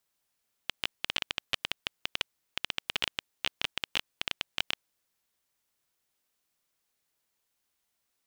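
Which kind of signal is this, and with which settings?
random clicks 13 per s -10.5 dBFS 4.17 s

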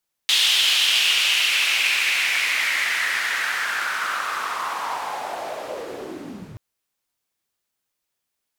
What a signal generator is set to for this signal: swept filtered noise white, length 6.28 s bandpass, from 3.3 kHz, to 110 Hz, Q 3.8, linear, gain ramp -7.5 dB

